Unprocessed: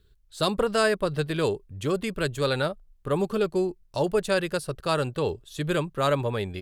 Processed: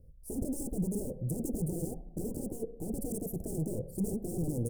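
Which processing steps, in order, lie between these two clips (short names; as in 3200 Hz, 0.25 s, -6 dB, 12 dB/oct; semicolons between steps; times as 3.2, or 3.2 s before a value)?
overloaded stage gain 29 dB; high shelf 2500 Hz -8 dB; tempo 1.1×; band shelf 1300 Hz +16 dB 2.8 oct; limiter -18.5 dBFS, peak gain reduction 8.5 dB; varispeed +28%; shoebox room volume 2800 m³, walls furnished, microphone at 0.63 m; wavefolder -28 dBFS; elliptic band-stop 430–9000 Hz, stop band 50 dB; gain +5.5 dB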